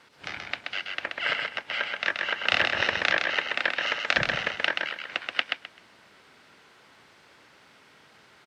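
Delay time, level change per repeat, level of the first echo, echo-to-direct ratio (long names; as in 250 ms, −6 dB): 129 ms, −13.0 dB, −4.0 dB, −4.0 dB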